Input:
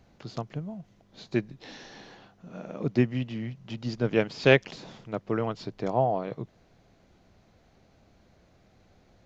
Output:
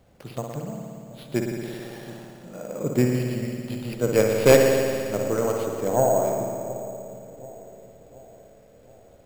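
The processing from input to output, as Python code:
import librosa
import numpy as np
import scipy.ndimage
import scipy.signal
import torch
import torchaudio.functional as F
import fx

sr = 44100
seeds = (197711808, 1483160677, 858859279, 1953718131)

y = fx.tracing_dist(x, sr, depth_ms=0.3)
y = fx.peak_eq(y, sr, hz=530.0, db=7.5, octaves=0.51)
y = fx.echo_split(y, sr, split_hz=760.0, low_ms=727, high_ms=157, feedback_pct=52, wet_db=-16)
y = fx.rev_spring(y, sr, rt60_s=2.3, pass_ms=(56,), chirp_ms=65, drr_db=0.5)
y = np.repeat(y[::6], 6)[:len(y)]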